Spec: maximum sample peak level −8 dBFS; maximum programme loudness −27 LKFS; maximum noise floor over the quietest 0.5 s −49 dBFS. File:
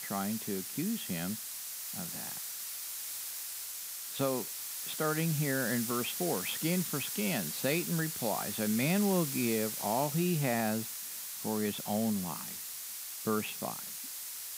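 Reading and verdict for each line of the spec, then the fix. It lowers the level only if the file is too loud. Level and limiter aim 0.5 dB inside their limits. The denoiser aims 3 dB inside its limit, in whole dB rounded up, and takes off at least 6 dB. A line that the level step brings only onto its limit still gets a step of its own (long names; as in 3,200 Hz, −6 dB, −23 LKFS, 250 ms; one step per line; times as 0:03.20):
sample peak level −17.0 dBFS: in spec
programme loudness −33.5 LKFS: in spec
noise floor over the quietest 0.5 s −42 dBFS: out of spec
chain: broadband denoise 10 dB, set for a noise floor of −42 dBFS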